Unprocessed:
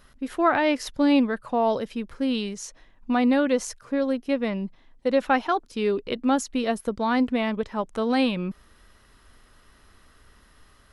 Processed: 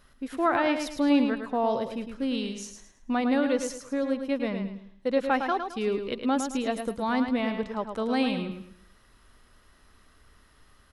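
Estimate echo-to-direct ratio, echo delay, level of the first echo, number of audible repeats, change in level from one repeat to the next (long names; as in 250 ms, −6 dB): −6.5 dB, 108 ms, −7.0 dB, 3, −9.5 dB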